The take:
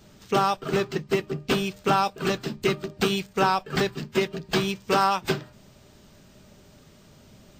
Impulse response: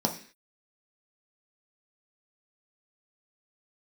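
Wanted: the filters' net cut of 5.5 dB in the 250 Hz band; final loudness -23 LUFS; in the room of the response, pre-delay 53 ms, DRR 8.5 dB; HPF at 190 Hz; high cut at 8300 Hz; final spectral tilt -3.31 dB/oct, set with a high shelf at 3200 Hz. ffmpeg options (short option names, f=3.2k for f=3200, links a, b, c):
-filter_complex "[0:a]highpass=190,lowpass=8.3k,equalizer=f=250:t=o:g=-6,highshelf=f=3.2k:g=-7.5,asplit=2[a][b];[1:a]atrim=start_sample=2205,adelay=53[c];[b][c]afir=irnorm=-1:irlink=0,volume=-17.5dB[d];[a][d]amix=inputs=2:normalize=0,volume=3.5dB"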